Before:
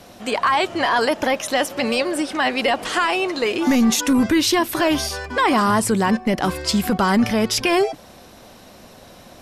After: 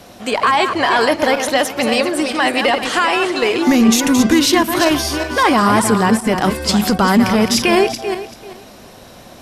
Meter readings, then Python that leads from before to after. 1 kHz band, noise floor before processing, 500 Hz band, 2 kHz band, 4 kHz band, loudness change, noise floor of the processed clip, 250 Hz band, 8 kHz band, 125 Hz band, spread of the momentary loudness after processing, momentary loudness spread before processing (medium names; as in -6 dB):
+4.5 dB, -45 dBFS, +5.0 dB, +5.0 dB, +5.0 dB, +4.5 dB, -40 dBFS, +5.0 dB, +4.5 dB, +5.0 dB, 6 LU, 5 LU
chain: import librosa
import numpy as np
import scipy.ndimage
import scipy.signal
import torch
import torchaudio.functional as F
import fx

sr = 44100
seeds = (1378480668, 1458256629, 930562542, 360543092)

y = fx.reverse_delay_fb(x, sr, ms=194, feedback_pct=44, wet_db=-7.0)
y = fx.cheby_harmonics(y, sr, harmonics=(3, 6), levels_db=(-29, -41), full_scale_db=-6.0)
y = y * 10.0 ** (4.5 / 20.0)